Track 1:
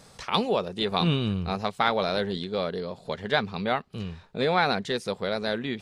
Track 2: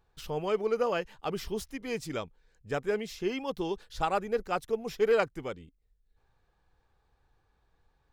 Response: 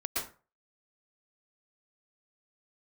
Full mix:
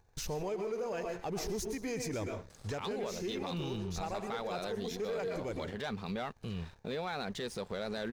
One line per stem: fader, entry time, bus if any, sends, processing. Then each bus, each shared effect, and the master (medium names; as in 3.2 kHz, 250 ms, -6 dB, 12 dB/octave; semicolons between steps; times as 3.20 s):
-13.0 dB, 2.50 s, no send, none
-1.5 dB, 0.00 s, send -9 dB, graphic EQ with 31 bands 100 Hz +9 dB, 1.25 kHz -9 dB, 3.15 kHz -10 dB, 6.3 kHz +9 dB; compression 1.5:1, threshold -54 dBFS, peak gain reduction 11.5 dB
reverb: on, RT60 0.35 s, pre-delay 107 ms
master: gain riding within 5 dB 0.5 s; waveshaping leveller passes 2; peak limiter -30 dBFS, peak gain reduction 10.5 dB